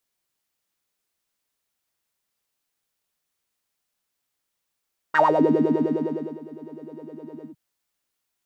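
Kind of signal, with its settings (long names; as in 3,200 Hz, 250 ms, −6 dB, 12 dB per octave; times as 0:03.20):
subtractive patch with filter wobble D#4, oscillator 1 saw, oscillator 2 saw, interval +19 semitones, oscillator 2 level −2 dB, sub −5 dB, filter bandpass, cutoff 150 Hz, Q 12, filter envelope 3 octaves, filter decay 0.30 s, attack 13 ms, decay 1.24 s, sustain −23 dB, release 0.09 s, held 2.32 s, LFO 9.8 Hz, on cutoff 0.6 octaves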